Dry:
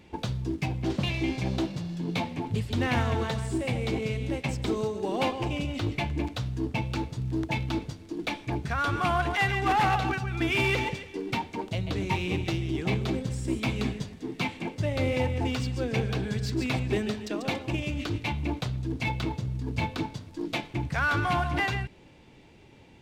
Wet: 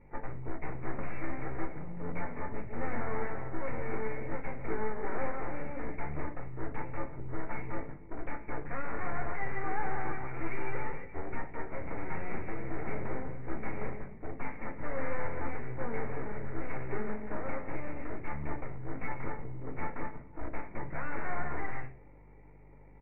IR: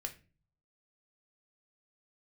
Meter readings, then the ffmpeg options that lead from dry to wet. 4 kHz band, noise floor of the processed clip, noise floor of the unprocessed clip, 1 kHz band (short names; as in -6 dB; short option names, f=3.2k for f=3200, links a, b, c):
under -40 dB, -53 dBFS, -53 dBFS, -8.5 dB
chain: -filter_complex "[0:a]highpass=f=440:p=1,equalizer=f=1.6k:t=o:w=0.3:g=-13,acrossover=split=580|3000[a][b][c];[b]alimiter=level_in=5dB:limit=-24dB:level=0:latency=1:release=71,volume=-5dB[d];[a][d][c]amix=inputs=3:normalize=0,aeval=exprs='val(0)+0.00224*(sin(2*PI*50*n/s)+sin(2*PI*2*50*n/s)/2+sin(2*PI*3*50*n/s)/3+sin(2*PI*4*50*n/s)/4+sin(2*PI*5*50*n/s)/5)':c=same,aeval=exprs='0.106*(cos(1*acos(clip(val(0)/0.106,-1,1)))-cos(1*PI/2))+0.00119*(cos(3*acos(clip(val(0)/0.106,-1,1)))-cos(3*PI/2))+0.00266*(cos(4*acos(clip(val(0)/0.106,-1,1)))-cos(4*PI/2))+0.0266*(cos(8*acos(clip(val(0)/0.106,-1,1)))-cos(8*PI/2))':c=same,asplit=2[e][f];[f]aeval=exprs='(mod(21.1*val(0)+1,2)-1)/21.1':c=same,volume=-5.5dB[g];[e][g]amix=inputs=2:normalize=0,asuperstop=centerf=3300:order=8:qfactor=1.2,asplit=2[h][i];[i]adelay=110,highpass=300,lowpass=3.4k,asoftclip=type=hard:threshold=-26dB,volume=-25dB[j];[h][j]amix=inputs=2:normalize=0[k];[1:a]atrim=start_sample=2205,asetrate=48510,aresample=44100[l];[k][l]afir=irnorm=-1:irlink=0,volume=-3dB" -ar 16000 -c:a aac -b:a 16k